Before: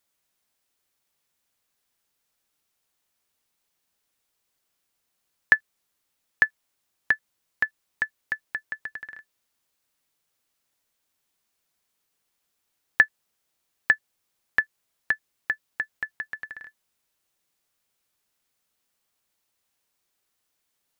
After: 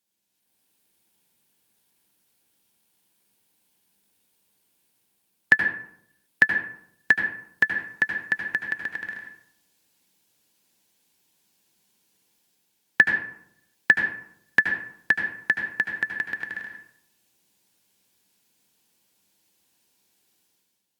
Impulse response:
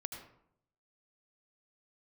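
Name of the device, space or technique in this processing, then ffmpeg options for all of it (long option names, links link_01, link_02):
far-field microphone of a smart speaker: -filter_complex "[0:a]equalizer=frequency=200:width_type=o:width=0.33:gain=7,equalizer=frequency=315:width_type=o:width=0.33:gain=3,equalizer=frequency=630:width_type=o:width=0.33:gain=-6,equalizer=frequency=1250:width_type=o:width=0.33:gain=-12,equalizer=frequency=2000:width_type=o:width=0.33:gain=-5[link_01];[1:a]atrim=start_sample=2205[link_02];[link_01][link_02]afir=irnorm=-1:irlink=0,highpass=100,dynaudnorm=framelen=140:gausssize=7:maxgain=11.5dB" -ar 48000 -c:a libopus -b:a 48k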